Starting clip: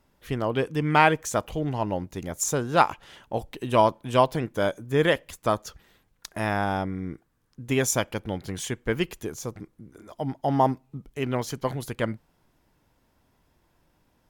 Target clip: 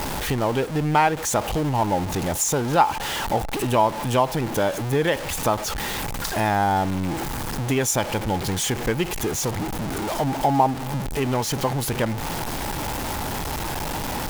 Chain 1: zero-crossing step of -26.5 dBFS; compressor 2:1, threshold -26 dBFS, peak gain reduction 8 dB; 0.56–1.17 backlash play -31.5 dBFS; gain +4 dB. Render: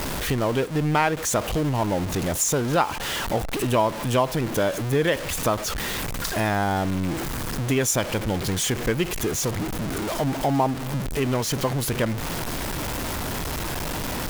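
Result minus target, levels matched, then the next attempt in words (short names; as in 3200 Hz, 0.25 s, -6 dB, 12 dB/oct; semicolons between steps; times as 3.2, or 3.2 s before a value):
1000 Hz band -3.5 dB
zero-crossing step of -26.5 dBFS; compressor 2:1, threshold -26 dBFS, peak gain reduction 8 dB; bell 840 Hz +9.5 dB 0.23 oct; 0.56–1.17 backlash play -31.5 dBFS; gain +4 dB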